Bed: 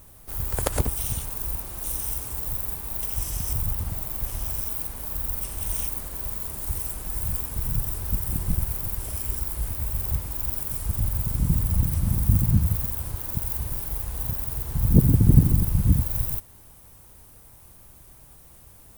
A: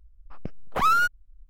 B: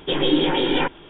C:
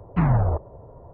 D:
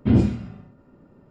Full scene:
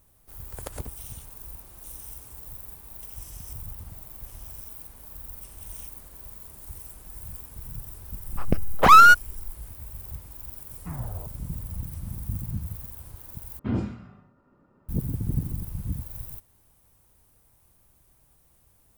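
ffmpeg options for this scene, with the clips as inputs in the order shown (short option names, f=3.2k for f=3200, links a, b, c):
-filter_complex "[0:a]volume=-12dB[a];[1:a]dynaudnorm=f=110:g=3:m=13dB[b];[4:a]equalizer=f=1.2k:w=1.2:g=9.5[c];[a]asplit=2[d][e];[d]atrim=end=13.594[f];[c]atrim=end=1.3,asetpts=PTS-STARTPTS,volume=-10.5dB[g];[e]atrim=start=14.886[h];[b]atrim=end=1.49,asetpts=PTS-STARTPTS,volume=-0.5dB,afade=t=in:d=0.004:c=hsin,afade=t=out:st=1.486:d=0.004:c=hsin,adelay=8070[i];[3:a]atrim=end=1.13,asetpts=PTS-STARTPTS,volume=-17dB,afade=t=in:d=0.004:c=hsin,afade=t=out:st=1.126:d=0.004:c=hsin,adelay=10690[j];[f][g]acrossfade=d=0.004:c1=hsin:c2=hsin[k];[k][h]acrossfade=d=0.004:c1=hsin:c2=hsin[l];[l][i][j]amix=inputs=3:normalize=0"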